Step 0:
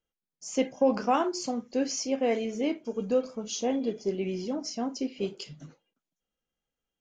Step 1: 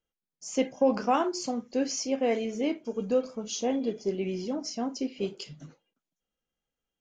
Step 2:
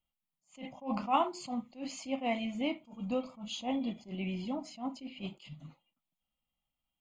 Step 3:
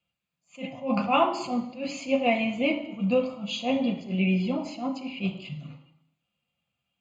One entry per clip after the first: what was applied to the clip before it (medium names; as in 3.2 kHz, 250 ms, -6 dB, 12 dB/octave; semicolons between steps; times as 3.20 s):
no audible change
static phaser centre 1.6 kHz, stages 6; attacks held to a fixed rise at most 210 dB/s; trim +1.5 dB
reverberation RT60 0.80 s, pre-delay 3 ms, DRR 5 dB